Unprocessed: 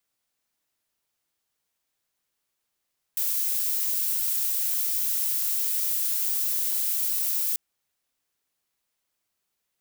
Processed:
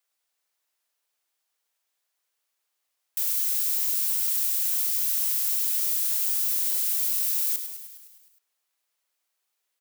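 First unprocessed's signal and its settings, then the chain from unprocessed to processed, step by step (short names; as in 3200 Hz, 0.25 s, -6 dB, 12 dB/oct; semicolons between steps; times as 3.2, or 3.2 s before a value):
noise violet, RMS -26 dBFS 4.39 s
HPF 510 Hz 12 dB/oct; frequency-shifting echo 0.103 s, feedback 64%, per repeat -52 Hz, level -9.5 dB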